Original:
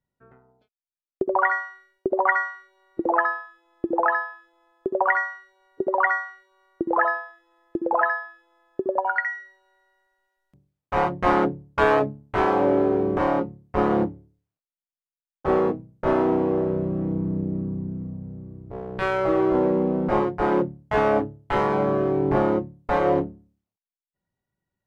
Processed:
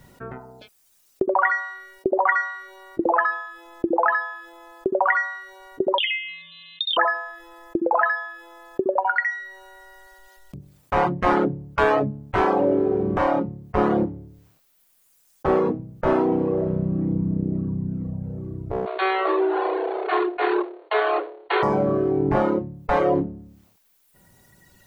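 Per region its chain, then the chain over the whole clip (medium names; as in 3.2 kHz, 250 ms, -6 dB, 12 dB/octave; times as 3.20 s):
5.98–6.97 s: compression 2:1, threshold -34 dBFS + frequency inversion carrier 4 kHz
18.86–21.63 s: comb filter that takes the minimum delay 2.8 ms + brick-wall FIR band-pass 330–4500 Hz
whole clip: reverb removal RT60 1.8 s; level flattener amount 50%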